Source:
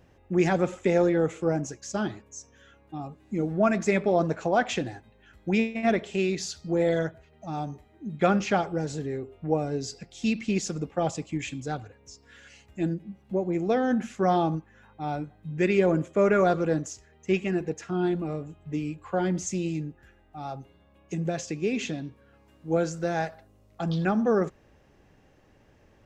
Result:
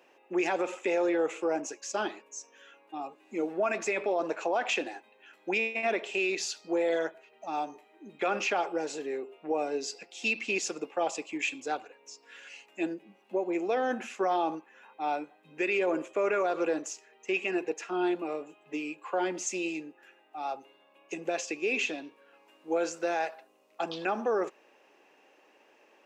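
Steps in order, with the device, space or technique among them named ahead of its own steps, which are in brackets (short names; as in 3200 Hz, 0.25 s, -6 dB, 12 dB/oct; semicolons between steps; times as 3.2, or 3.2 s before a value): laptop speaker (HPF 330 Hz 24 dB/oct; bell 940 Hz +4.5 dB 0.52 oct; bell 2600 Hz +10 dB 0.31 oct; limiter -20 dBFS, peak gain reduction 10.5 dB)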